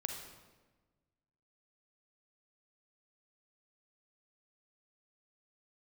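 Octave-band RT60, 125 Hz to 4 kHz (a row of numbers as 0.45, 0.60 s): 1.8, 1.6, 1.4, 1.2, 1.1, 0.90 s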